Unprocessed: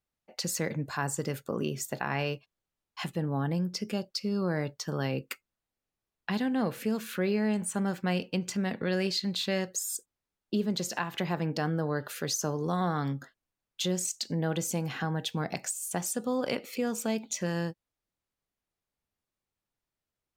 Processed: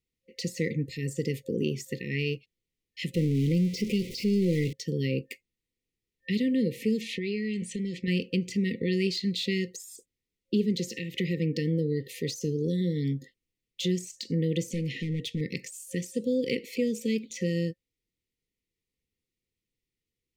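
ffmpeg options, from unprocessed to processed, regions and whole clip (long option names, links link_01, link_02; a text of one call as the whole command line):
ffmpeg -i in.wav -filter_complex "[0:a]asettb=1/sr,asplit=3[link_01][link_02][link_03];[link_01]atrim=end=3.144[link_04];[link_02]atrim=start=3.14:end=4.73,asetpts=PTS-STARTPTS,afade=type=in:duration=0.004:curve=qsin,afade=type=out:start_time=1.586:duration=0.004:curve=qsin,aeval=exprs='val(0)+0.5*0.0211*sgn(val(0))':channel_layout=same,asuperstop=centerf=1400:order=20:qfactor=1.5[link_05];[link_03]atrim=start=4.726[link_06];[link_04][link_05]acrossfade=duration=0.004:curve1=hsin:curve2=qsin[link_07];[link_07][link_06]acrossfade=duration=0.004:curve1=qsin:curve2=hsin,asettb=1/sr,asplit=3[link_08][link_09][link_10];[link_08]atrim=end=7.014[link_11];[link_09]atrim=start=7.01:end=8.08,asetpts=PTS-STARTPTS,afade=type=in:duration=0.004:curve=qsin,afade=type=out:start_time=1.066:duration=0.004:curve=qsin,lowpass=4200,highshelf=frequency=2300:gain=11.5,acompressor=threshold=-30dB:ratio=5:attack=3.2:release=140:knee=1:detection=peak[link_12];[link_10]atrim=start=8.076[link_13];[link_11][link_12]acrossfade=duration=0.004:curve1=hsin:curve2=qsin[link_14];[link_14][link_13]acrossfade=duration=0.004:curve1=qsin:curve2=hsin,asettb=1/sr,asplit=3[link_15][link_16][link_17];[link_15]atrim=end=14.704[link_18];[link_16]atrim=start=14.7:end=15.41,asetpts=PTS-STARTPTS,afade=type=in:duration=0.004:curve=qsin,afade=type=out:start_time=0.706:duration=0.004:curve=qsin,lowpass=11000,asoftclip=type=hard:threshold=-29dB[link_19];[link_17]atrim=start=15.406[link_20];[link_18][link_19]acrossfade=duration=0.004:curve1=hsin:curve2=qsin[link_21];[link_21][link_20]acrossfade=duration=0.004:curve1=qsin:curve2=hsin,deesser=0.75,afftfilt=real='re*(1-between(b*sr/4096,530,1800))':imag='im*(1-between(b*sr/4096,530,1800))':win_size=4096:overlap=0.75,highshelf=frequency=6700:gain=-7.5,volume=3.5dB" out.wav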